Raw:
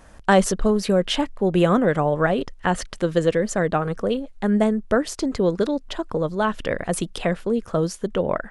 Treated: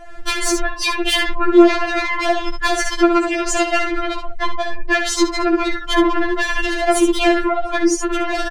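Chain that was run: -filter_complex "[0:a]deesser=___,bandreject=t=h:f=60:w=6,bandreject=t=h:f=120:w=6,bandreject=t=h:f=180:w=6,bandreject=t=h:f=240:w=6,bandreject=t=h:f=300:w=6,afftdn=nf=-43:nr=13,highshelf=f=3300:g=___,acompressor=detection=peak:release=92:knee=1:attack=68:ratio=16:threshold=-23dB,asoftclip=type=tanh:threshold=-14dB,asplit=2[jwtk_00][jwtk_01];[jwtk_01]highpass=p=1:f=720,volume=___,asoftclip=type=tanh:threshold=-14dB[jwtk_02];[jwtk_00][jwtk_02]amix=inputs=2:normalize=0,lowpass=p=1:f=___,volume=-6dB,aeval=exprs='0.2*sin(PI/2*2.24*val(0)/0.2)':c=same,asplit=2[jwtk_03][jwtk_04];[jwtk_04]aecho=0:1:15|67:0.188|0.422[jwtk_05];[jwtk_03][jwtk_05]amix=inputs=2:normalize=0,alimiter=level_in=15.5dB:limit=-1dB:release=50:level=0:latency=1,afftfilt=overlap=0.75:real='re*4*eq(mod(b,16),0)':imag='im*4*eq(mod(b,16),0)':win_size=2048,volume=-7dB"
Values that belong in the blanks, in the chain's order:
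0.25, -9, 14dB, 4300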